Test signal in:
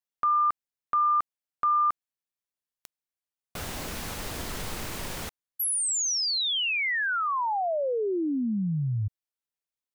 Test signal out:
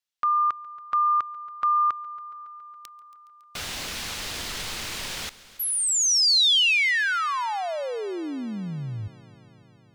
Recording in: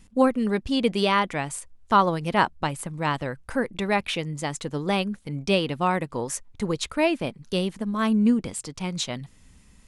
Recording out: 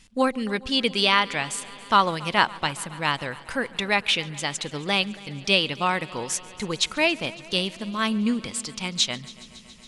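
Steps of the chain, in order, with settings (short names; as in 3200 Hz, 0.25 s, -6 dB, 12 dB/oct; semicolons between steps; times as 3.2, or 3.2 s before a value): bell 3800 Hz +13 dB 2.9 oct; on a send: multi-head echo 0.139 s, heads first and second, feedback 74%, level -24 dB; on the sum: gain -4.5 dB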